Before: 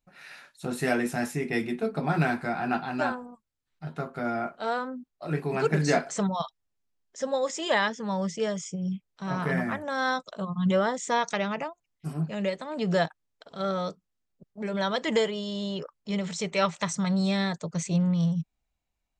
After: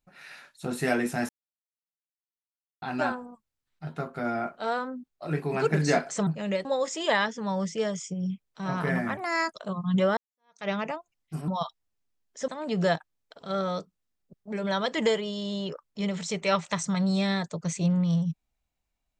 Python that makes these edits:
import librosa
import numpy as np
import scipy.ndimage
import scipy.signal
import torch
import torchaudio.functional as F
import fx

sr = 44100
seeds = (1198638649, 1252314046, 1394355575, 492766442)

y = fx.edit(x, sr, fx.silence(start_s=1.29, length_s=1.53),
    fx.swap(start_s=6.27, length_s=1.0, other_s=12.2, other_length_s=0.38),
    fx.speed_span(start_s=9.79, length_s=0.47, speed=1.27),
    fx.fade_in_span(start_s=10.89, length_s=0.51, curve='exp'), tone=tone)